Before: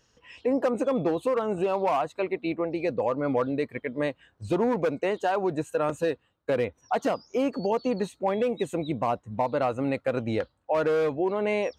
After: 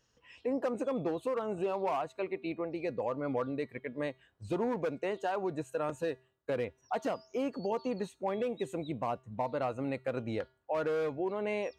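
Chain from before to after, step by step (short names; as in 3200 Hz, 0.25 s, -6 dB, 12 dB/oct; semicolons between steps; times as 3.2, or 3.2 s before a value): resonator 130 Hz, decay 0.48 s, harmonics odd, mix 40%; gain -3.5 dB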